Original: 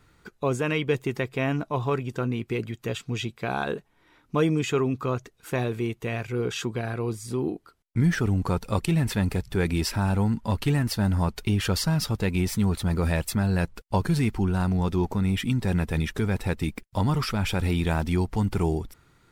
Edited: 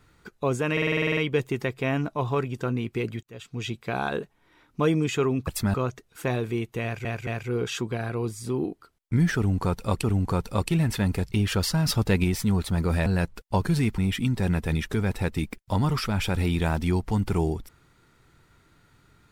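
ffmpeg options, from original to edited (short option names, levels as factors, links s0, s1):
-filter_complex "[0:a]asplit=21[s0][s1][s2][s3][s4][s5][s6][s7][s8][s9][s10][s11][s12][s13][s14][s15][s16][s17][s18][s19][s20];[s0]atrim=end=0.772[s21];[s1]atrim=start=0.718:end=0.772[s22];[s2]atrim=start=0.718:end=0.772[s23];[s3]atrim=start=0.718:end=0.772[s24];[s4]atrim=start=0.718:end=0.772[s25];[s5]atrim=start=0.718:end=0.772[s26];[s6]atrim=start=0.718:end=0.772[s27];[s7]atrim=start=0.718:end=0.772[s28];[s8]atrim=start=0.718:end=0.772[s29];[s9]atrim=start=0.718:end=2.78,asetpts=PTS-STARTPTS,afade=t=out:st=2.058:d=0.004:c=hsin[s30];[s10]atrim=start=2.78:end=5.022,asetpts=PTS-STARTPTS,afade=t=in:d=0.51[s31];[s11]atrim=start=13.188:end=13.462[s32];[s12]atrim=start=5.018:end=6.332[s33];[s13]atrim=start=6.108:end=6.332[s34];[s14]atrim=start=6.108:end=8.872[s35];[s15]atrim=start=8.198:end=9.492[s36];[s16]atrim=start=11.448:end=11.992[s37];[s17]atrim=start=11.988:end=12.372,asetpts=PTS-STARTPTS,volume=1.5[s38];[s18]atrim=start=12.368:end=13.192[s39];[s19]atrim=start=13.458:end=14.382[s40];[s20]atrim=start=15.228[s41];[s21][s22]acrossfade=d=0.004:c1=hsin:c2=hsin[s42];[s42][s23]acrossfade=d=0.004:c1=hsin:c2=hsin[s43];[s43][s24]acrossfade=d=0.004:c1=hsin:c2=hsin[s44];[s44][s25]acrossfade=d=0.004:c1=hsin:c2=hsin[s45];[s45][s26]acrossfade=d=0.004:c1=hsin:c2=hsin[s46];[s46][s27]acrossfade=d=0.004:c1=hsin:c2=hsin[s47];[s47][s28]acrossfade=d=0.004:c1=hsin:c2=hsin[s48];[s48][s29]acrossfade=d=0.004:c1=hsin:c2=hsin[s49];[s30][s31]concat=n=2:v=0:a=1[s50];[s49][s50]acrossfade=d=0.004:c1=hsin:c2=hsin[s51];[s51][s32]acrossfade=d=0.004:c1=hsin:c2=hsin[s52];[s52][s33]acrossfade=d=0.004:c1=hsin:c2=hsin[s53];[s53][s34]acrossfade=d=0.004:c1=hsin:c2=hsin[s54];[s54][s35]acrossfade=d=0.004:c1=hsin:c2=hsin[s55];[s55][s36]acrossfade=d=0.004:c1=hsin:c2=hsin[s56];[s56][s37]acrossfade=d=0.004:c1=hsin:c2=hsin[s57];[s57][s38]acrossfade=d=0.004:c1=hsin:c2=hsin[s58];[s58][s39]acrossfade=d=0.004:c1=hsin:c2=hsin[s59];[s59][s40]acrossfade=d=0.004:c1=hsin:c2=hsin[s60];[s60][s41]acrossfade=d=0.004:c1=hsin:c2=hsin"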